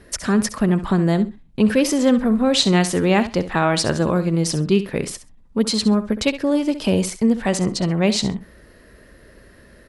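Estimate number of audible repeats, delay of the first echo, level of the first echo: 2, 66 ms, −13.0 dB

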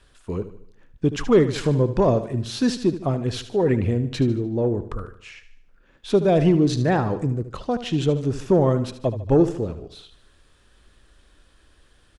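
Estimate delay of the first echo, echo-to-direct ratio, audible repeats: 75 ms, −11.5 dB, 4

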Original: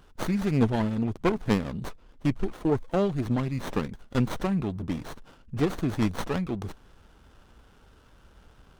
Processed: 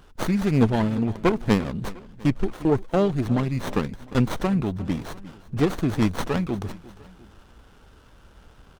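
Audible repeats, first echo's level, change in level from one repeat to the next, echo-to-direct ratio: 2, −19.0 dB, −5.5 dB, −18.0 dB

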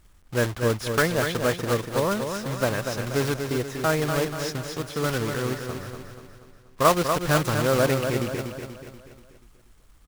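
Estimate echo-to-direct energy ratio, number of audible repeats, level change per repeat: −5.5 dB, 5, −6.0 dB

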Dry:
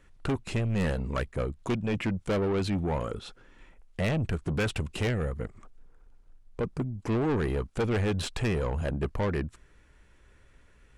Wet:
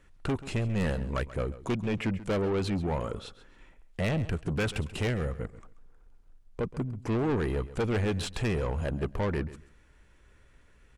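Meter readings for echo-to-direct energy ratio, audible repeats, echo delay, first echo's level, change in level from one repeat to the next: −16.0 dB, 2, 135 ms, −16.0 dB, −13.5 dB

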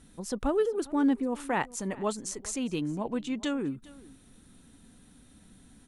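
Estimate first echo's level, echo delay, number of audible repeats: −21.0 dB, 406 ms, 1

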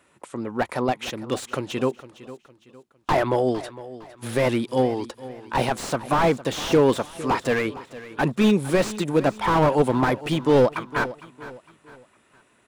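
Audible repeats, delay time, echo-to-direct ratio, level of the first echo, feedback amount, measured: 3, 458 ms, −16.0 dB, −16.5 dB, 37%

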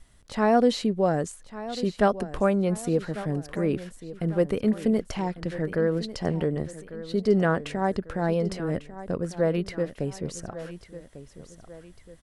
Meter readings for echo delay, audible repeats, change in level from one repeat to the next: 1,147 ms, 2, −7.0 dB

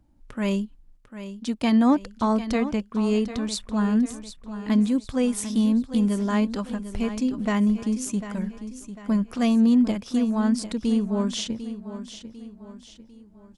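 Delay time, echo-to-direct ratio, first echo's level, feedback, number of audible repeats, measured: 748 ms, −11.0 dB, −12.0 dB, 43%, 4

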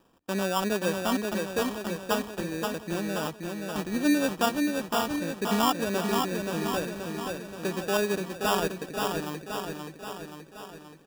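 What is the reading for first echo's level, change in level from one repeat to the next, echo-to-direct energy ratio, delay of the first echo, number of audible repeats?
−4.0 dB, −4.5 dB, −2.0 dB, 527 ms, 7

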